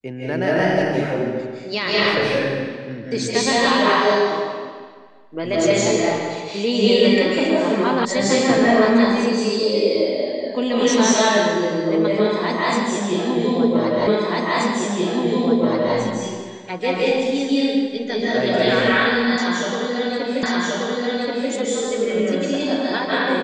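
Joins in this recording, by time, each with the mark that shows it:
0:08.05: cut off before it has died away
0:14.07: the same again, the last 1.88 s
0:20.43: the same again, the last 1.08 s

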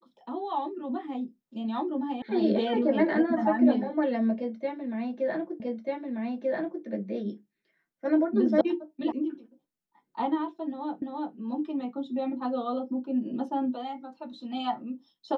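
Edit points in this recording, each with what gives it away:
0:02.22: cut off before it has died away
0:05.60: the same again, the last 1.24 s
0:08.61: cut off before it has died away
0:09.12: cut off before it has died away
0:11.02: the same again, the last 0.34 s

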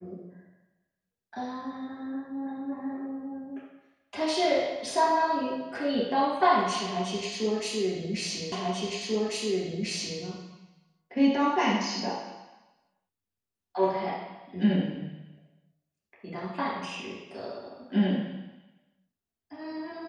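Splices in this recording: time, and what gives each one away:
0:08.52: the same again, the last 1.69 s

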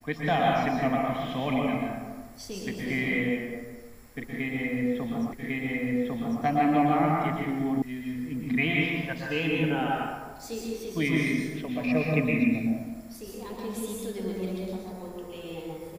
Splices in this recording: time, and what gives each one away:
0:05.33: the same again, the last 1.1 s
0:07.82: cut off before it has died away

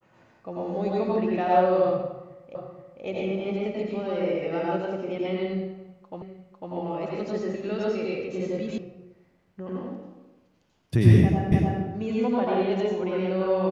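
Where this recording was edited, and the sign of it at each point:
0:02.55: the same again, the last 0.48 s
0:06.22: the same again, the last 0.5 s
0:08.78: cut off before it has died away
0:11.52: the same again, the last 0.3 s

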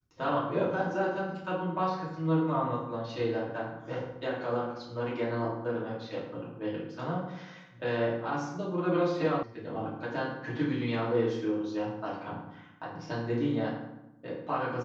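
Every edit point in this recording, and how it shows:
0:09.43: cut off before it has died away

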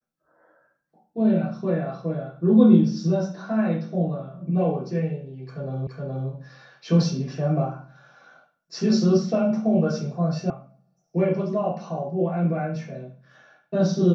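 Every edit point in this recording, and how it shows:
0:05.87: the same again, the last 0.42 s
0:10.50: cut off before it has died away

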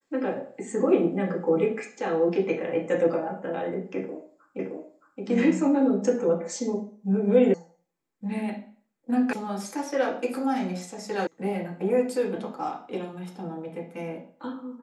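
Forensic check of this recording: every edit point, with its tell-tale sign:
0:04.59: the same again, the last 0.62 s
0:07.54: cut off before it has died away
0:09.33: cut off before it has died away
0:11.27: cut off before it has died away

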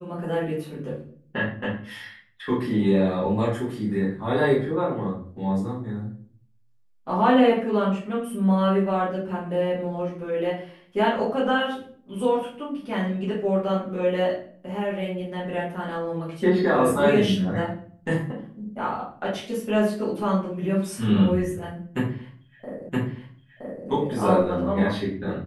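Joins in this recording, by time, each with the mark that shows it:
0:22.89: the same again, the last 0.97 s

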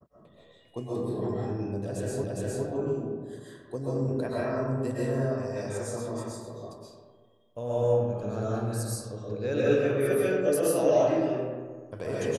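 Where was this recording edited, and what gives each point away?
0:02.24: the same again, the last 0.41 s

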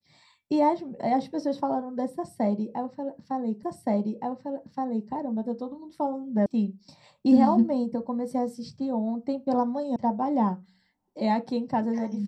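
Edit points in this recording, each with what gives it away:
0:03.63: the same again, the last 1.47 s
0:06.46: cut off before it has died away
0:09.96: cut off before it has died away

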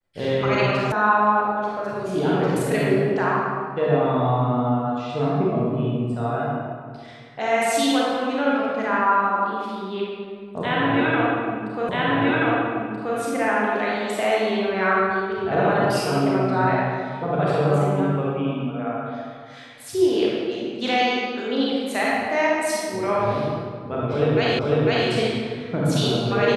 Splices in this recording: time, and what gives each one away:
0:00.92: cut off before it has died away
0:11.89: the same again, the last 1.28 s
0:24.59: the same again, the last 0.5 s

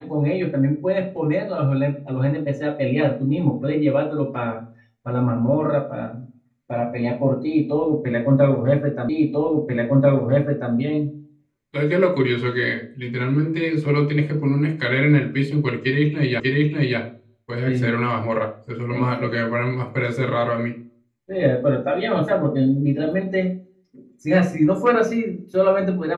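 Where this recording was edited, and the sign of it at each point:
0:09.09: the same again, the last 1.64 s
0:16.40: the same again, the last 0.59 s

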